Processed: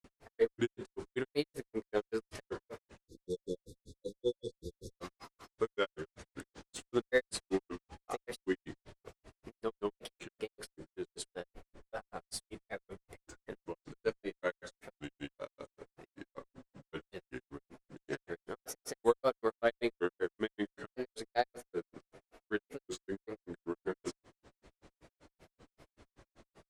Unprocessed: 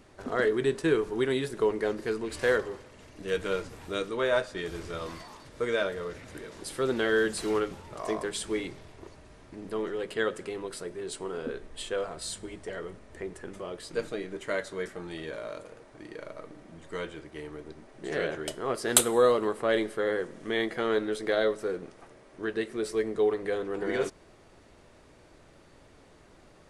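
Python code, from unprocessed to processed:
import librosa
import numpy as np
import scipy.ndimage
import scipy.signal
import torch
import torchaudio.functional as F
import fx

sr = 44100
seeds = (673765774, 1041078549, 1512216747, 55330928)

p1 = fx.granulator(x, sr, seeds[0], grain_ms=98.0, per_s=5.2, spray_ms=100.0, spread_st=3)
p2 = fx.spec_erase(p1, sr, start_s=3.02, length_s=1.89, low_hz=550.0, high_hz=3400.0)
p3 = fx.cheby_harmonics(p2, sr, harmonics=(2, 7), levels_db=(-23, -31), full_scale_db=-13.0)
p4 = 10.0 ** (-26.5 / 20.0) * np.tanh(p3 / 10.0 ** (-26.5 / 20.0))
p5 = p3 + F.gain(torch.from_numpy(p4), -7.0).numpy()
y = F.gain(torch.from_numpy(p5), -2.5).numpy()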